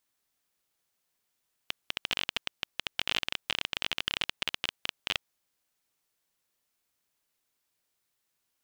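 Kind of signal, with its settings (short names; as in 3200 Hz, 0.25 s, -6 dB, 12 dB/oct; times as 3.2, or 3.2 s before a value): random clicks 21/s -11 dBFS 3.56 s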